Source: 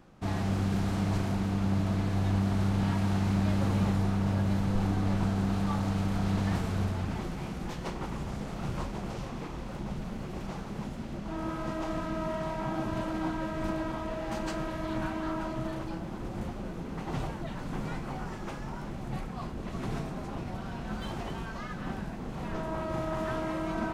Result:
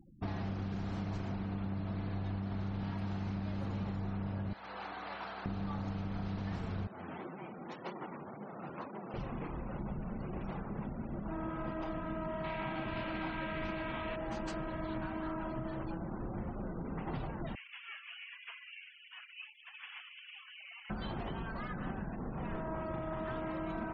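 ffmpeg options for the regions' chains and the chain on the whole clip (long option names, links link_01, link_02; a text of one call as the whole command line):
ffmpeg -i in.wav -filter_complex "[0:a]asettb=1/sr,asplit=3[link_01][link_02][link_03];[link_01]atrim=end=4.534[link_04];[link_02]atrim=start=4.53:end=5.46,asetpts=PTS-STARTPTS,afade=type=in:duration=0.004:curve=qsin,afade=type=out:start_time=0.926:duration=0.004:curve=qsin,highpass=830,aeval=exprs='val(0)+0.000891*(sin(2*PI*60*n/s)+sin(2*PI*2*60*n/s)/2+sin(2*PI*3*60*n/s)/3+sin(2*PI*4*60*n/s)/4+sin(2*PI*5*60*n/s)/5)':channel_layout=same[link_05];[link_03]atrim=start=5.456[link_06];[link_04][link_05]acrossfade=duration=0.004:curve1=hsin:curve2=qsin[link_07];[link_07][link_06]acrossfade=duration=0.004:curve1=qsin:curve2=hsin,asettb=1/sr,asplit=3[link_08][link_09][link_10];[link_08]atrim=end=6.874[link_11];[link_09]atrim=start=6.87:end=9.14,asetpts=PTS-STARTPTS,afade=type=in:duration=0.004:curve=qsin,afade=type=out:start_time=2.266:duration=0.004:curve=qsin,highpass=270,flanger=delay=5:depth=7.8:regen=-18:speed=1.9:shape=sinusoidal[link_12];[link_10]atrim=start=9.136[link_13];[link_11][link_12]acrossfade=duration=0.004:curve1=hsin:curve2=qsin[link_14];[link_14][link_13]acrossfade=duration=0.004:curve1=qsin:curve2=hsin,asettb=1/sr,asplit=3[link_15][link_16][link_17];[link_15]atrim=end=12.444[link_18];[link_16]atrim=start=12.44:end=14.16,asetpts=PTS-STARTPTS,afade=type=in:duration=0.004:curve=qsin,afade=type=out:start_time=1.716:duration=0.004:curve=qsin,equalizer=frequency=2400:width=1.2:gain=12,asplit=2[link_19][link_20];[link_20]adelay=49,volume=-11.5dB[link_21];[link_19][link_21]amix=inputs=2:normalize=0,atrim=end_sample=75852[link_22];[link_17]atrim=start=14.156[link_23];[link_18][link_22]acrossfade=duration=0.004:curve1=hsin:curve2=qsin[link_24];[link_24][link_23]acrossfade=duration=0.004:curve1=qsin:curve2=hsin,asettb=1/sr,asplit=3[link_25][link_26][link_27];[link_25]atrim=end=17.554[link_28];[link_26]atrim=start=17.55:end=20.9,asetpts=PTS-STARTPTS,afade=type=in:duration=0.004:curve=qsin,afade=type=out:start_time=3.346:duration=0.004:curve=qsin,highpass=1200,lowpass=frequency=3100:width_type=q:width=0.5098,lowpass=frequency=3100:width_type=q:width=0.6013,lowpass=frequency=3100:width_type=q:width=0.9,lowpass=frequency=3100:width_type=q:width=2.563,afreqshift=-3700[link_29];[link_27]atrim=start=20.896[link_30];[link_28][link_29]acrossfade=duration=0.004:curve1=hsin:curve2=qsin[link_31];[link_31][link_30]acrossfade=duration=0.004:curve1=qsin:curve2=hsin,afftfilt=real='re*gte(hypot(re,im),0.00501)':imag='im*gte(hypot(re,im),0.00501)':win_size=1024:overlap=0.75,acompressor=threshold=-34dB:ratio=6,volume=-1dB" out.wav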